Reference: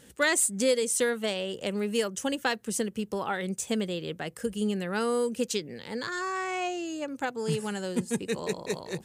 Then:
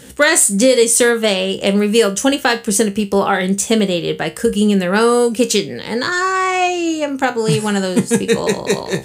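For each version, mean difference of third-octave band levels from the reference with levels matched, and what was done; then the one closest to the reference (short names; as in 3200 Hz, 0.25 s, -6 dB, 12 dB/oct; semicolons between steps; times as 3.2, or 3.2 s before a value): 1.5 dB: resonator 66 Hz, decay 0.24 s, harmonics all, mix 70%; maximiser +21 dB; gain -1 dB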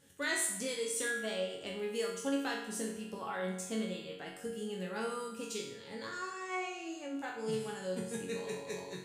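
6.0 dB: resonator bank F#2 minor, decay 0.67 s; spring tank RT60 2.3 s, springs 39 ms, chirp 50 ms, DRR 13.5 dB; gain +8.5 dB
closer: first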